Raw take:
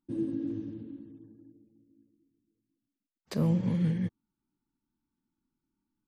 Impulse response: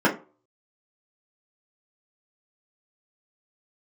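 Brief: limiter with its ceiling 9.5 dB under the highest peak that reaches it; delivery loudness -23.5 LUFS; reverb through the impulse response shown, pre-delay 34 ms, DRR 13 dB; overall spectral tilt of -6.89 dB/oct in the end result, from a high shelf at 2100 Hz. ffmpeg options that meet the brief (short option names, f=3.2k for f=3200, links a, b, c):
-filter_complex "[0:a]highshelf=f=2.1k:g=4.5,alimiter=level_in=2dB:limit=-24dB:level=0:latency=1,volume=-2dB,asplit=2[a][b];[1:a]atrim=start_sample=2205,adelay=34[c];[b][c]afir=irnorm=-1:irlink=0,volume=-31dB[d];[a][d]amix=inputs=2:normalize=0,volume=11.5dB"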